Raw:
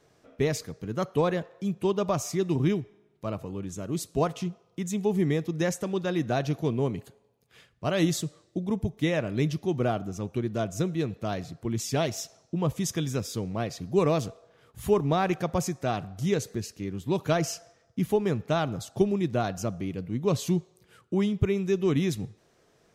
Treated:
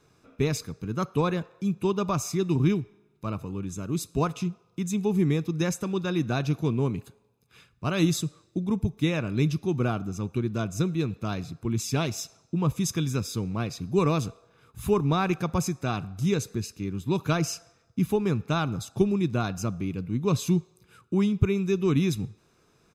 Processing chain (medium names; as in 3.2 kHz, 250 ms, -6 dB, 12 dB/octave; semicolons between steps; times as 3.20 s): comb 0.8 ms, depth 51%